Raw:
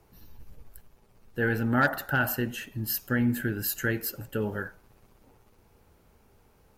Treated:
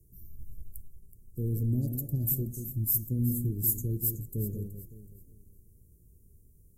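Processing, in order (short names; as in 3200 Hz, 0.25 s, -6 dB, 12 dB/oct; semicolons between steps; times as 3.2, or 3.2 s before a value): inverse Chebyshev band-stop 1100–2500 Hz, stop band 80 dB; bell 250 Hz -10.5 dB 0.97 oct; echo with dull and thin repeats by turns 0.187 s, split 1600 Hz, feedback 54%, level -7 dB; gain +4 dB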